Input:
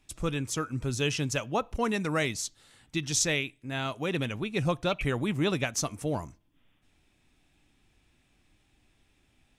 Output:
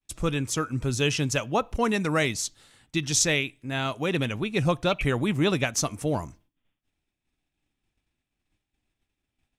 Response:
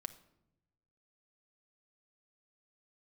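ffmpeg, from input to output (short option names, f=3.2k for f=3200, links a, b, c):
-af "agate=range=-33dB:threshold=-54dB:ratio=3:detection=peak,volume=4dB"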